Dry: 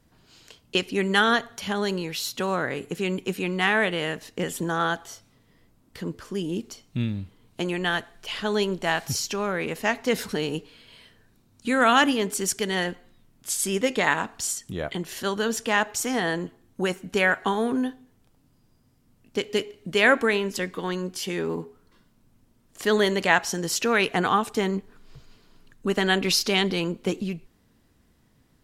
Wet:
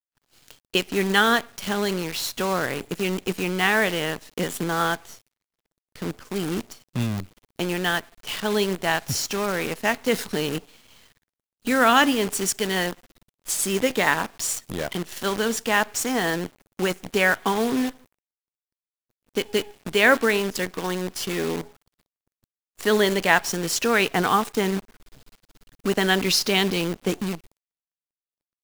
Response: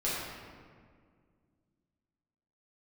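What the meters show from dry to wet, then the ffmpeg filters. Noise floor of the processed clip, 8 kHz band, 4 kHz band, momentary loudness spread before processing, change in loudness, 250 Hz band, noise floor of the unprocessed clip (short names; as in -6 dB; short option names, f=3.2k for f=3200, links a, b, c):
under -85 dBFS, +2.5 dB, +2.0 dB, 11 LU, +1.5 dB, +1.5 dB, -63 dBFS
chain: -af "acrusher=bits=6:dc=4:mix=0:aa=0.000001,agate=range=-33dB:threshold=-51dB:ratio=3:detection=peak,volume=1.5dB"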